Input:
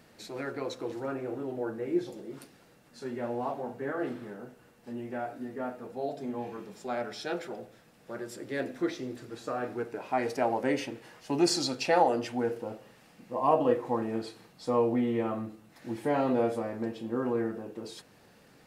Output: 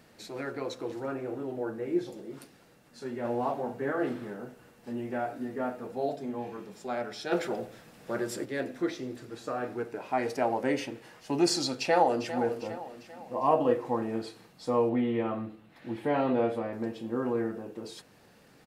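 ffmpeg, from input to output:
-filter_complex "[0:a]asplit=3[a][b][c];[a]afade=t=out:st=7.31:d=0.02[d];[b]acontrast=77,afade=t=in:st=7.31:d=0.02,afade=t=out:st=8.44:d=0.02[e];[c]afade=t=in:st=8.44:d=0.02[f];[d][e][f]amix=inputs=3:normalize=0,asplit=2[g][h];[h]afade=t=in:st=11.69:d=0.01,afade=t=out:st=12.37:d=0.01,aecho=0:1:400|800|1200|1600|2000:0.251189|0.125594|0.0627972|0.0313986|0.0156993[i];[g][i]amix=inputs=2:normalize=0,asettb=1/sr,asplit=3[j][k][l];[j]atrim=end=14.894[m];[k]atrim=start=14.89:end=16.73,asetpts=PTS-STARTPTS,afade=t=in:d=0.004:c=qsin,afade=t=out:st=1.836:d=0.004:c=qsin,highshelf=f=4.5k:t=q:w=1.5:g=-8[n];[l]atrim=start=16.726[o];[m][n]acrossfade=d=0.004:c1=hsin:c2=qsin[p];[p][o]acrossfade=d=0.004:c1=qsin:c2=hsin,asplit=3[q][r][s];[q]atrim=end=3.252[t];[r]atrim=start=3.248:end=6.162,asetpts=PTS-STARTPTS,volume=3dB[u];[s]atrim=start=6.158[v];[t][u]acrossfade=d=0.004:c1=hsin:c2=hsin[w];[w][v]acrossfade=d=0.004:c1=hsin:c2=hsin"

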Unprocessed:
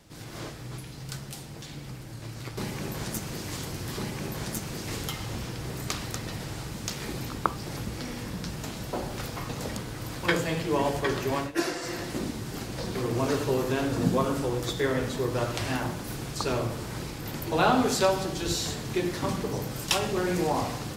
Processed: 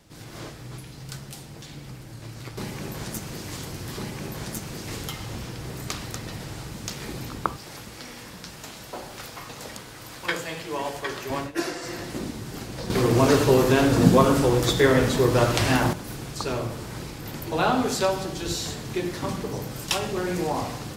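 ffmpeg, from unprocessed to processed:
-filter_complex "[0:a]asettb=1/sr,asplit=3[a][b][c];[a]atrim=end=7.564[d];[b]atrim=start=7.56:end=11.3,asetpts=PTS-STARTPTS,afade=t=in:d=0.004:c=qsin,afade=t=out:st=3.736:d=0.004:c=qsin,lowshelf=f=410:g=-11[e];[c]atrim=start=11.296[f];[d][e]acrossfade=d=0.004:c1=hsin:c2=qsin[g];[g][f]acrossfade=d=0.004:c1=qsin:c2=hsin,asplit=3[h][i][j];[h]atrim=end=12.902[k];[i]atrim=start=12.898:end=15.932,asetpts=PTS-STARTPTS,volume=8.5dB[l];[j]atrim=start=15.928[m];[k][l]acrossfade=d=0.004:c1=hsin:c2=hsin[n];[n][m]acrossfade=d=0.004:c1=hsin:c2=hsin"

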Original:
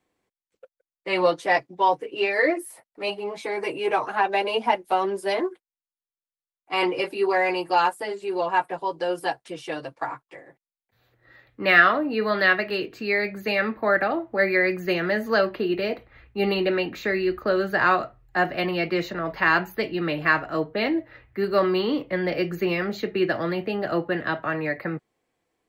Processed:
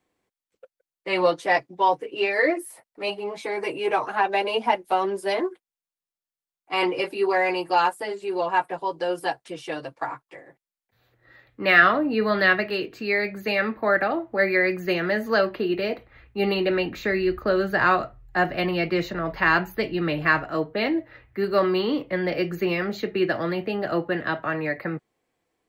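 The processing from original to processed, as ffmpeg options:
-filter_complex "[0:a]asettb=1/sr,asplit=3[a][b][c];[a]atrim=end=11.824[d];[b]atrim=start=11.82:end=12.66,asetpts=PTS-STARTPTS,afade=t=in:d=0.004:c=qsin,afade=t=out:st=0.836:d=0.004:c=qsin,lowshelf=f=160:g=10[e];[c]atrim=start=12.656[f];[d][e]acrossfade=d=0.004:c1=hsin:c2=qsin[g];[g][f]acrossfade=d=0.004:c1=qsin:c2=hsin,asettb=1/sr,asplit=3[h][i][j];[h]atrim=end=16.714[k];[i]atrim=start=16.71:end=20.45,asetpts=PTS-STARTPTS,afade=t=in:d=0.004:c=qsin,afade=t=out:st=3.736:d=0.004:c=qsin,lowshelf=f=100:g=10.5[l];[j]atrim=start=20.446[m];[k][l]acrossfade=d=0.004:c1=hsin:c2=qsin[n];[n][m]acrossfade=d=0.004:c1=qsin:c2=hsin"

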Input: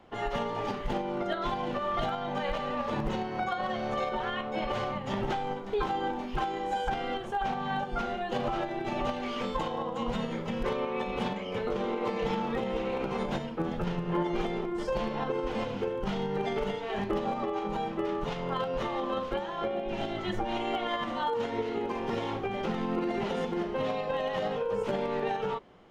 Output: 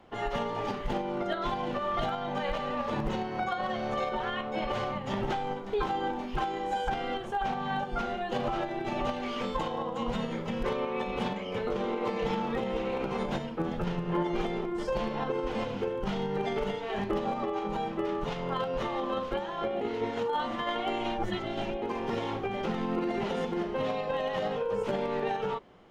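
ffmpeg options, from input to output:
-filter_complex "[0:a]asplit=3[a][b][c];[a]atrim=end=19.812[d];[b]atrim=start=19.808:end=21.822,asetpts=PTS-STARTPTS,areverse[e];[c]atrim=start=21.818[f];[d][e]acrossfade=d=0.004:c1=hsin:c2=hsin[g];[g][f]acrossfade=d=0.004:c1=hsin:c2=hsin"

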